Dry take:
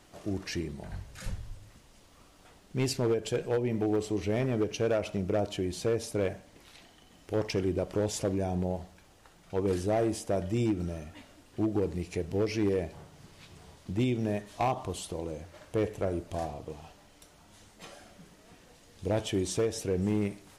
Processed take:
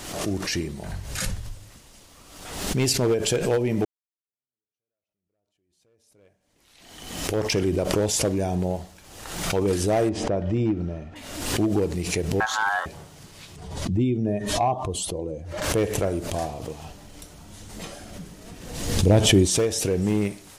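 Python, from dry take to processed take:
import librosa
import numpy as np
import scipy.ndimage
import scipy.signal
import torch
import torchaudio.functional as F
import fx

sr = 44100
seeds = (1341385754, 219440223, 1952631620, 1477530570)

y = fx.spacing_loss(x, sr, db_at_10k=31, at=(10.09, 11.16))
y = fx.ring_mod(y, sr, carrier_hz=1200.0, at=(12.4, 12.86))
y = fx.spec_expand(y, sr, power=1.5, at=(13.56, 15.62))
y = fx.low_shelf(y, sr, hz=380.0, db=10.5, at=(16.84, 19.46), fade=0.02)
y = fx.edit(y, sr, fx.fade_in_span(start_s=3.85, length_s=3.61, curve='exp'), tone=tone)
y = fx.high_shelf(y, sr, hz=3900.0, db=7.5)
y = fx.pre_swell(y, sr, db_per_s=53.0)
y = F.gain(torch.from_numpy(y), 5.5).numpy()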